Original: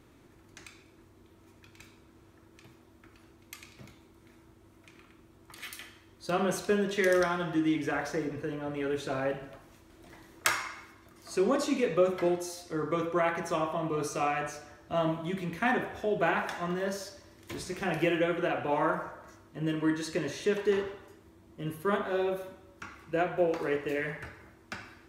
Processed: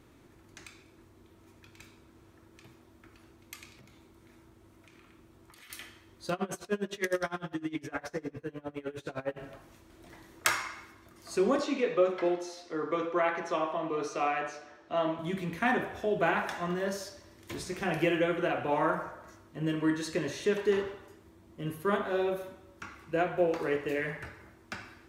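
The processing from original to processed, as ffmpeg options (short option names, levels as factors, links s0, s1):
-filter_complex "[0:a]asettb=1/sr,asplit=3[s0][s1][s2];[s0]atrim=end=3.754[s3];[s1]atrim=start=3.75:end=5.7,asetpts=PTS-STARTPTS,afade=t=in:d=0.004:c=qsin,afade=t=out:st=1.946:d=0.004:c=qsin,acompressor=threshold=0.00251:ratio=5:attack=3.2:release=140:knee=1:detection=peak[s4];[s2]atrim=start=5.696[s5];[s3][s4]acrossfade=d=0.004:c1=hsin:c2=qsin[s6];[s6][s5]acrossfade=d=0.004:c1=qsin:c2=hsin,asplit=3[s7][s8][s9];[s7]afade=t=out:st=6.32:d=0.02[s10];[s8]aeval=exprs='val(0)*pow(10,-25*(0.5-0.5*cos(2*PI*9.8*n/s))/20)':c=same,afade=t=in:st=6.32:d=0.02,afade=t=out:st=9.36:d=0.02[s11];[s9]afade=t=in:st=9.36:d=0.02[s12];[s10][s11][s12]amix=inputs=3:normalize=0,asettb=1/sr,asplit=3[s13][s14][s15];[s13]atrim=end=11.594[s16];[s14]atrim=start=11.59:end=15.19,asetpts=PTS-STARTPTS,afade=t=in:d=0.004:c=qsin,afade=t=out:st=3.596:d=0.004:c=qsin,acrossover=split=230 6000:gain=0.178 1 0.1[s17][s18][s19];[s17][s18][s19]amix=inputs=3:normalize=0[s20];[s15]atrim=start=15.186[s21];[s16][s20]acrossfade=d=0.004:c1=hsin:c2=qsin[s22];[s22][s21]acrossfade=d=0.004:c1=qsin:c2=hsin"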